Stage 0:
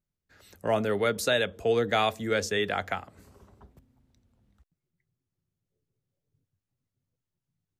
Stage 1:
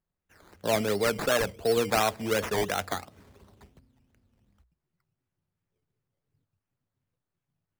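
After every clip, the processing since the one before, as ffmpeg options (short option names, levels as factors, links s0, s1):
-af "acrusher=samples=13:mix=1:aa=0.000001:lfo=1:lforange=7.8:lforate=2.8,bandreject=f=60:t=h:w=6,bandreject=f=120:t=h:w=6"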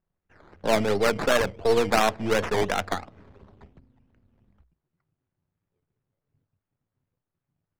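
-af "aeval=exprs='if(lt(val(0),0),0.447*val(0),val(0))':c=same,adynamicsmooth=sensitivity=4:basefreq=2700,volume=2.11"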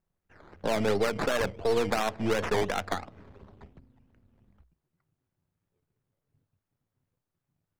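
-af "alimiter=limit=0.15:level=0:latency=1:release=129"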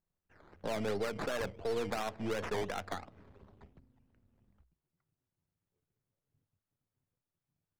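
-af "asoftclip=type=tanh:threshold=0.119,volume=0.447"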